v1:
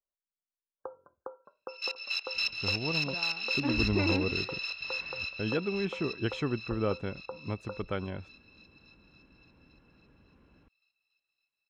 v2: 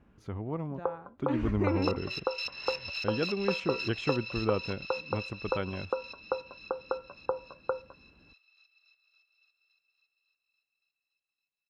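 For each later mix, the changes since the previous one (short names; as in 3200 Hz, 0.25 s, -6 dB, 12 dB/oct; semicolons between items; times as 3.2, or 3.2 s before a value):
speech: entry -2.35 s; first sound +10.5 dB; second sound -5.5 dB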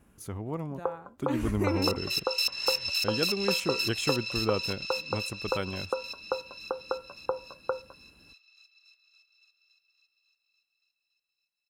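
master: remove air absorption 230 m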